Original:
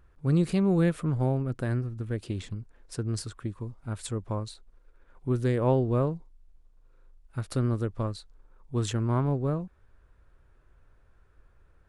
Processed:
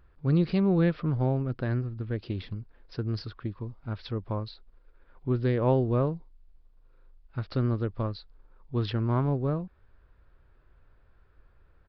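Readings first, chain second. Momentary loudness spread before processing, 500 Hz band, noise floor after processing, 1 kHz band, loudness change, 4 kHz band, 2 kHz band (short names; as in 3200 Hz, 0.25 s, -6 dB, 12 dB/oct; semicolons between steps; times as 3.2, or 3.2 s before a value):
15 LU, 0.0 dB, -61 dBFS, 0.0 dB, 0.0 dB, -0.5 dB, 0.0 dB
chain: downsampling 11025 Hz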